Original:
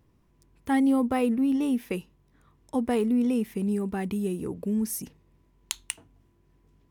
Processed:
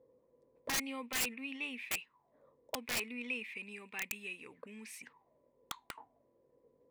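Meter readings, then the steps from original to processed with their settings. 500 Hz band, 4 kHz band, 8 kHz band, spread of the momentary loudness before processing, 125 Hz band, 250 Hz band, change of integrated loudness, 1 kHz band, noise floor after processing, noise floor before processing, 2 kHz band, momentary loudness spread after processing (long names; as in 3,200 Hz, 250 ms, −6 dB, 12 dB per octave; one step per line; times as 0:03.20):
−18.5 dB, +1.0 dB, −3.0 dB, 13 LU, −23.0 dB, −23.5 dB, −12.0 dB, −13.0 dB, −75 dBFS, −65 dBFS, +1.5 dB, 16 LU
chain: envelope filter 490–2,500 Hz, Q 9.9, up, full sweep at −28.5 dBFS
EQ curve with evenly spaced ripples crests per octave 0.99, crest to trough 6 dB
wrap-around overflow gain 42.5 dB
level +14.5 dB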